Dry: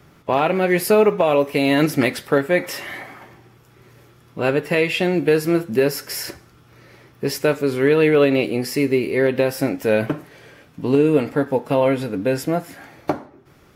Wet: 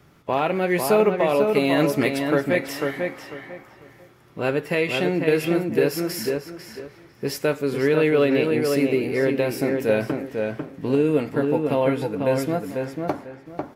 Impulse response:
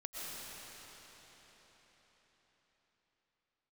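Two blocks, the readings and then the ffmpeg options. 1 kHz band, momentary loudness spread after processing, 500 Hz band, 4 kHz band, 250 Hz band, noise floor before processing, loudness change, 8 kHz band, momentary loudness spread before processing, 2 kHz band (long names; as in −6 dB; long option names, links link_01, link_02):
−2.5 dB, 13 LU, −2.5 dB, −3.5 dB, −2.5 dB, −51 dBFS, −3.0 dB, −4.0 dB, 12 LU, −3.0 dB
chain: -filter_complex "[0:a]asplit=2[link_01][link_02];[link_02]adelay=497,lowpass=frequency=2600:poles=1,volume=-4dB,asplit=2[link_03][link_04];[link_04]adelay=497,lowpass=frequency=2600:poles=1,volume=0.25,asplit=2[link_05][link_06];[link_06]adelay=497,lowpass=frequency=2600:poles=1,volume=0.25[link_07];[link_01][link_03][link_05][link_07]amix=inputs=4:normalize=0,volume=-4dB"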